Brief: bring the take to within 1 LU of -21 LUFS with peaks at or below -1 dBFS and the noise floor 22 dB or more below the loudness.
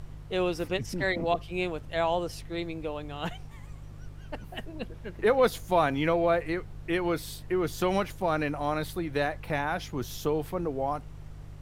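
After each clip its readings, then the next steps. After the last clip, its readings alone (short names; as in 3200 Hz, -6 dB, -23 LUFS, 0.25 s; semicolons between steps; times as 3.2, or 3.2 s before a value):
hum 50 Hz; harmonics up to 150 Hz; hum level -43 dBFS; noise floor -45 dBFS; noise floor target -52 dBFS; loudness -29.5 LUFS; peak -11.5 dBFS; loudness target -21.0 LUFS
-> de-hum 50 Hz, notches 3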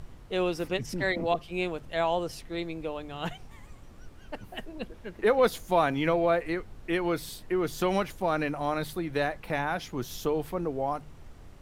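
hum none; noise floor -50 dBFS; noise floor target -52 dBFS
-> noise print and reduce 6 dB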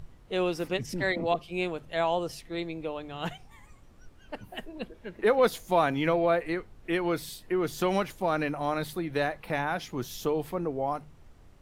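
noise floor -55 dBFS; loudness -29.5 LUFS; peak -11.5 dBFS; loudness target -21.0 LUFS
-> gain +8.5 dB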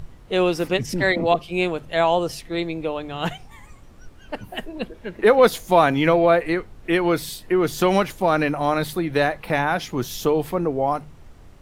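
loudness -21.0 LUFS; peak -3.0 dBFS; noise floor -46 dBFS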